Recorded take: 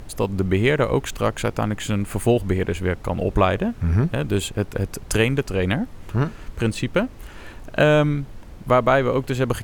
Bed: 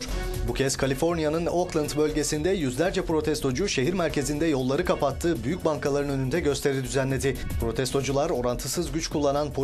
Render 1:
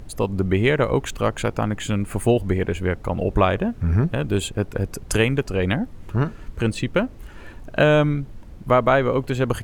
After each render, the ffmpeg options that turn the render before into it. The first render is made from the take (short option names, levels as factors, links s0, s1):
-af "afftdn=nr=6:nf=-41"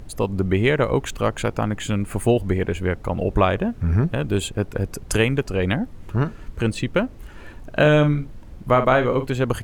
-filter_complex "[0:a]asettb=1/sr,asplit=3[s0][s1][s2];[s0]atrim=end=7.764[s3];[s1]atrim=start=7.76:end=9.27,asetpts=PTS-STARTPTS,afade=t=in:d=0.004:c=qsin,afade=t=out:st=1.506:d=0.004:c=qsin,asplit=2[s4][s5];[s5]adelay=47,volume=0.335[s6];[s4][s6]amix=inputs=2:normalize=0,atrim=end_sample=66591[s7];[s2]atrim=start=9.266[s8];[s3][s7]acrossfade=d=0.004:c1=hsin:c2=qsin[s9];[s9][s8]acrossfade=d=0.004:c1=qsin:c2=hsin"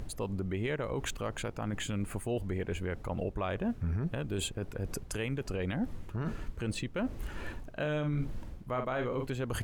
-af "areverse,acompressor=threshold=0.0447:ratio=10,areverse,alimiter=limit=0.0631:level=0:latency=1:release=69"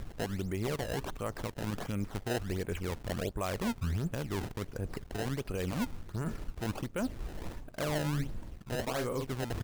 -af "aresample=11025,aeval=exprs='sgn(val(0))*max(abs(val(0))-0.00168,0)':c=same,aresample=44100,acrusher=samples=22:mix=1:aa=0.000001:lfo=1:lforange=35.2:lforate=1.4"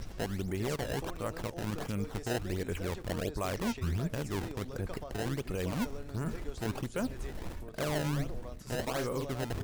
-filter_complex "[1:a]volume=0.0891[s0];[0:a][s0]amix=inputs=2:normalize=0"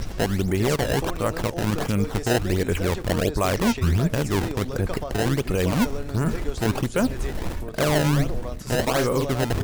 -af "volume=3.98"